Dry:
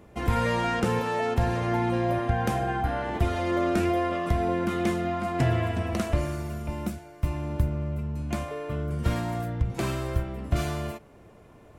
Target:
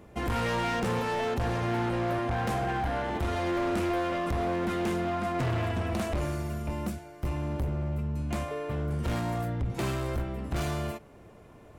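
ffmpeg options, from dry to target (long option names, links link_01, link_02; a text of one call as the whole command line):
ffmpeg -i in.wav -af "asoftclip=type=hard:threshold=-26dB" out.wav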